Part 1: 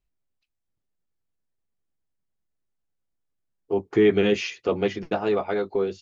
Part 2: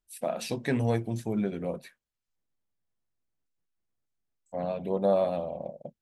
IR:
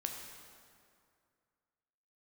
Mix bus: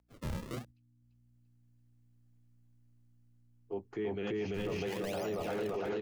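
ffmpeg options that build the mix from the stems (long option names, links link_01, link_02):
-filter_complex "[0:a]bandreject=frequency=3600:width=17,dynaudnorm=framelen=160:gausssize=9:maxgain=14dB,aeval=exprs='val(0)+0.00251*(sin(2*PI*60*n/s)+sin(2*PI*2*60*n/s)/2+sin(2*PI*3*60*n/s)/3+sin(2*PI*4*60*n/s)/4+sin(2*PI*5*60*n/s)/5)':channel_layout=same,volume=-9dB,asplit=2[link_01][link_02];[link_02]volume=-4.5dB[link_03];[1:a]highshelf=frequency=2400:gain=-11,acrusher=samples=34:mix=1:aa=0.000001:lfo=1:lforange=54.4:lforate=0.71,volume=-1.5dB,asplit=3[link_04][link_05][link_06];[link_04]atrim=end=0.65,asetpts=PTS-STARTPTS,afade=type=out:start_time=0.646:duration=0.004:curve=hsin[link_07];[link_05]atrim=start=0.65:end=2.09,asetpts=PTS-STARTPTS,volume=0[link_08];[link_06]atrim=start=2.09,asetpts=PTS-STARTPTS,afade=type=in:duration=0.004:curve=hsin[link_09];[link_07][link_08][link_09]concat=n=3:v=0:a=1,asplit=2[link_10][link_11];[link_11]apad=whole_len=265403[link_12];[link_01][link_12]sidechaingate=range=-13dB:threshold=-49dB:ratio=16:detection=peak[link_13];[link_03]aecho=0:1:341|682|1023|1364|1705|2046|2387|2728:1|0.56|0.314|0.176|0.0983|0.0551|0.0308|0.0173[link_14];[link_13][link_10][link_14]amix=inputs=3:normalize=0,acrossover=split=120[link_15][link_16];[link_16]acompressor=threshold=-32dB:ratio=2[link_17];[link_15][link_17]amix=inputs=2:normalize=0,alimiter=level_in=4.5dB:limit=-24dB:level=0:latency=1:release=20,volume=-4.5dB"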